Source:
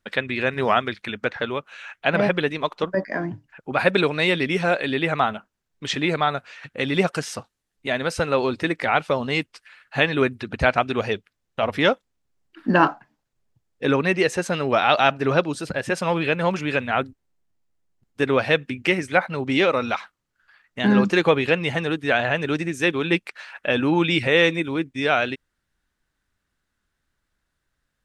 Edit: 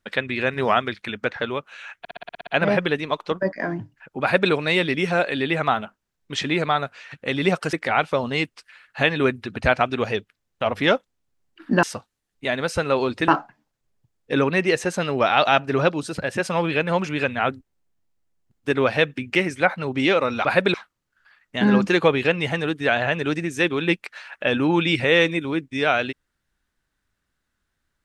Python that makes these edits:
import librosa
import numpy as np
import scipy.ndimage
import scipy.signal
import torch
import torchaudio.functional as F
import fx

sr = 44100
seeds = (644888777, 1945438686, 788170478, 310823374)

y = fx.edit(x, sr, fx.stutter(start_s=1.99, slice_s=0.06, count=9),
    fx.duplicate(start_s=3.74, length_s=0.29, to_s=19.97),
    fx.move(start_s=7.25, length_s=1.45, to_s=12.8), tone=tone)